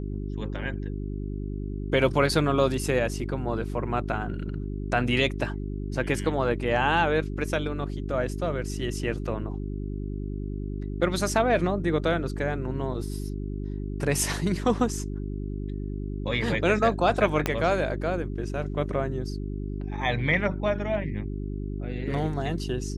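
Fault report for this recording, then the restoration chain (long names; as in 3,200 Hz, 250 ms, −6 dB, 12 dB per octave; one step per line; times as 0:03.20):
mains hum 50 Hz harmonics 8 −32 dBFS
0:17.46: click −9 dBFS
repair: click removal
hum removal 50 Hz, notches 8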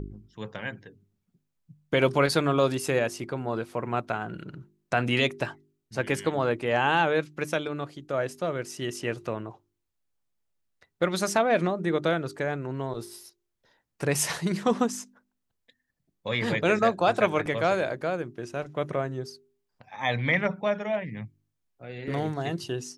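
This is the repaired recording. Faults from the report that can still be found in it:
0:17.46: click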